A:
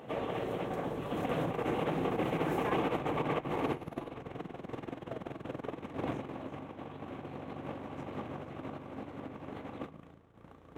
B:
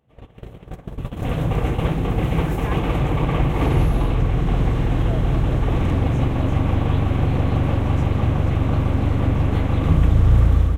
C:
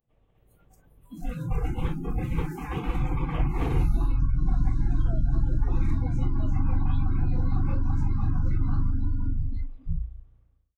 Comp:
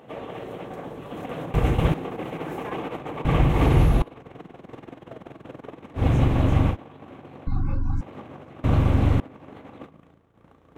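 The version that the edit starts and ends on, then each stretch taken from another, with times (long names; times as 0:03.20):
A
0:01.54–0:01.94: punch in from B
0:03.25–0:04.02: punch in from B
0:06.00–0:06.72: punch in from B, crossfade 0.10 s
0:07.47–0:08.01: punch in from C
0:08.64–0:09.20: punch in from B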